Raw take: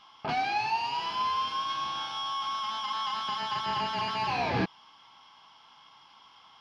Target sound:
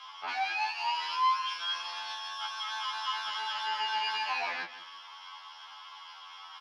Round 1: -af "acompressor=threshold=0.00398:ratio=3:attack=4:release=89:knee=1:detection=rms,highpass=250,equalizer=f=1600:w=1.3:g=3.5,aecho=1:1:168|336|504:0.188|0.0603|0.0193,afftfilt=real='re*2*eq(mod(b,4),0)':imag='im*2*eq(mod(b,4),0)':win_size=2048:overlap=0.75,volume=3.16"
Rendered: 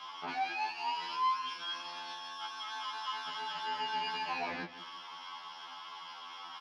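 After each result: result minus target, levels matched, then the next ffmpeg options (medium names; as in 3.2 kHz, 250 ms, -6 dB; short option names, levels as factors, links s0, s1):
250 Hz band +17.5 dB; compression: peak gain reduction +6 dB
-af "acompressor=threshold=0.00398:ratio=3:attack=4:release=89:knee=1:detection=rms,highpass=880,equalizer=f=1600:w=1.3:g=3.5,aecho=1:1:168|336|504:0.188|0.0603|0.0193,afftfilt=real='re*2*eq(mod(b,4),0)':imag='im*2*eq(mod(b,4),0)':win_size=2048:overlap=0.75,volume=3.16"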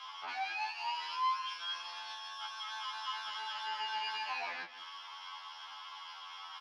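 compression: peak gain reduction +6 dB
-af "acompressor=threshold=0.0112:ratio=3:attack=4:release=89:knee=1:detection=rms,highpass=880,equalizer=f=1600:w=1.3:g=3.5,aecho=1:1:168|336|504:0.188|0.0603|0.0193,afftfilt=real='re*2*eq(mod(b,4),0)':imag='im*2*eq(mod(b,4),0)':win_size=2048:overlap=0.75,volume=3.16"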